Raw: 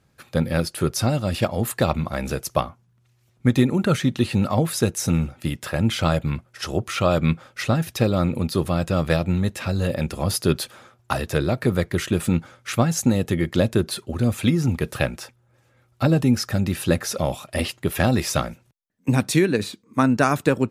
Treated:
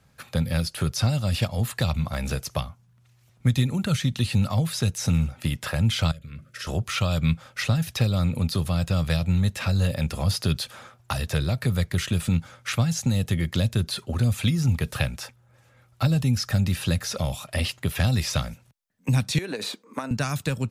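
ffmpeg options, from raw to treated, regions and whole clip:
ffmpeg -i in.wav -filter_complex "[0:a]asettb=1/sr,asplit=3[link_01][link_02][link_03];[link_01]atrim=end=6.114[link_04];[link_02]atrim=start=6.11:end=6.67,asetpts=PTS-STARTPTS,afade=type=in:duration=0.004:curve=qsin,afade=type=out:start_time=0.556:duration=0.004:curve=qsin,acompressor=threshold=-34dB:ratio=12:attack=3.2:release=140:knee=1:detection=peak,asuperstop=centerf=850:order=8:qfactor=1.7,bandreject=frequency=50:width_type=h:width=6,bandreject=frequency=100:width_type=h:width=6,bandreject=frequency=150:width_type=h:width=6,bandreject=frequency=200:width_type=h:width=6,bandreject=frequency=250:width_type=h:width=6,bandreject=frequency=300:width_type=h:width=6,bandreject=frequency=350:width_type=h:width=6,bandreject=frequency=400:width_type=h:width=6[link_05];[link_03]atrim=start=6.666[link_06];[link_04][link_05]acrossfade=duration=0.004:curve1=hsin:curve2=qsin[link_07];[link_07][link_06]acrossfade=duration=0.004:curve1=qsin:curve2=hsin,asettb=1/sr,asplit=3[link_08][link_09][link_10];[link_08]atrim=end=19.384[link_11];[link_09]atrim=start=19.38:end=20.11,asetpts=PTS-STARTPTS,afade=type=in:duration=0.004:curve=qsin,afade=type=out:start_time=0.726:duration=0.004:curve=qsin,equalizer=frequency=560:width=0.41:gain=9.5,acompressor=threshold=-15dB:ratio=10:attack=3.2:release=140:knee=1:detection=peak,highpass=330[link_12];[link_10]atrim=start=20.106[link_13];[link_11][link_12]acrossfade=duration=0.004:curve1=hsin:curve2=qsin[link_14];[link_14][link_13]acrossfade=duration=0.004:curve1=qsin:curve2=hsin,acrossover=split=5100[link_15][link_16];[link_16]acompressor=threshold=-39dB:ratio=4:attack=1:release=60[link_17];[link_15][link_17]amix=inputs=2:normalize=0,equalizer=frequency=340:width=1.9:gain=-7.5,acrossover=split=150|3000[link_18][link_19][link_20];[link_19]acompressor=threshold=-33dB:ratio=6[link_21];[link_18][link_21][link_20]amix=inputs=3:normalize=0,volume=3.5dB" out.wav

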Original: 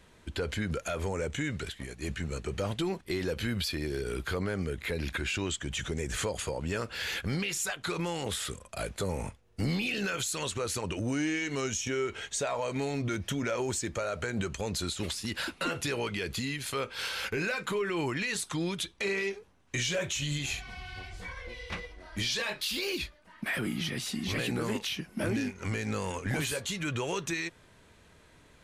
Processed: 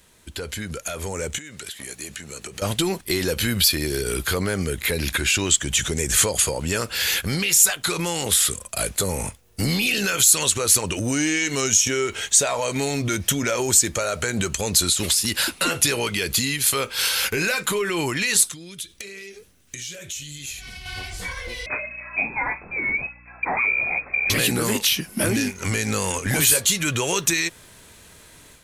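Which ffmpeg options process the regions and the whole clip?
ffmpeg -i in.wav -filter_complex "[0:a]asettb=1/sr,asplit=3[link_01][link_02][link_03];[link_01]atrim=end=1.384[link_04];[link_02]atrim=start=1.38:end=2.62,asetpts=PTS-STARTPTS,afade=type=in:duration=0.004:curve=qsin,afade=type=out:start_time=1.236:duration=0.004:curve=qsin,highpass=frequency=270:poles=1,acompressor=threshold=-42dB:ratio=16:attack=3.2:release=140:knee=1:detection=peak[link_05];[link_03]atrim=start=2.616[link_06];[link_04][link_05]acrossfade=duration=0.004:curve1=hsin:curve2=qsin[link_07];[link_07][link_06]acrossfade=duration=0.004:curve1=qsin:curve2=hsin,asettb=1/sr,asplit=3[link_08][link_09][link_10];[link_08]atrim=end=18.474[link_11];[link_09]atrim=start=18.47:end=20.86,asetpts=PTS-STARTPTS,afade=type=in:duration=0.004:curve=qsin,afade=type=out:start_time=2.386:duration=0.004:curve=qsin,equalizer=frequency=910:width_type=o:width=0.86:gain=-11.5,acompressor=threshold=-43dB:ratio=10:attack=3.2:release=140:knee=1:detection=peak[link_12];[link_10]atrim=start=20.856[link_13];[link_11][link_12]acrossfade=duration=0.004:curve1=hsin:curve2=qsin[link_14];[link_14][link_13]acrossfade=duration=0.004:curve1=qsin:curve2=hsin,asettb=1/sr,asplit=3[link_15][link_16][link_17];[link_15]atrim=end=21.664[link_18];[link_16]atrim=start=21.66:end=24.3,asetpts=PTS-STARTPTS,afade=type=in:duration=0.004:curve=qsin,afade=type=out:start_time=2.636:duration=0.004:curve=qsin,lowpass=frequency=2200:width_type=q:width=0.5098,lowpass=frequency=2200:width_type=q:width=0.6013,lowpass=frequency=2200:width_type=q:width=0.9,lowpass=frequency=2200:width_type=q:width=2.563,afreqshift=-2600,aeval=exprs='val(0)+0.00126*(sin(2*PI*60*n/s)+sin(2*PI*2*60*n/s)/2+sin(2*PI*3*60*n/s)/3+sin(2*PI*4*60*n/s)/4+sin(2*PI*5*60*n/s)/5)':channel_layout=same[link_19];[link_17]atrim=start=24.296[link_20];[link_18][link_19]acrossfade=duration=0.004:curve1=hsin:curve2=qsin[link_21];[link_21][link_20]acrossfade=duration=0.004:curve1=qsin:curve2=hsin,aemphasis=mode=production:type=75fm,dynaudnorm=framelen=920:gausssize=3:maxgain=9dB" out.wav

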